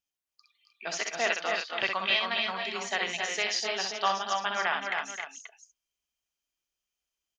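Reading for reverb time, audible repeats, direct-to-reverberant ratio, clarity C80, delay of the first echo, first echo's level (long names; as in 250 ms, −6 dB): no reverb audible, 4, no reverb audible, no reverb audible, 63 ms, −5.5 dB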